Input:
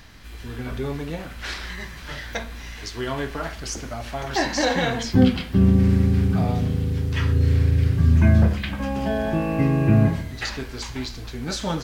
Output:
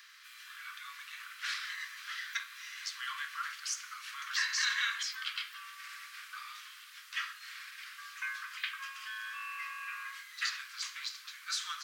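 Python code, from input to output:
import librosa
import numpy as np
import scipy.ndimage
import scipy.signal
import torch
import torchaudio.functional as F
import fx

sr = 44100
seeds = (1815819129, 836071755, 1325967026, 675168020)

y = scipy.signal.sosfilt(scipy.signal.butter(16, 1100.0, 'highpass', fs=sr, output='sos'), x)
y = F.gain(torch.from_numpy(y), -4.5).numpy()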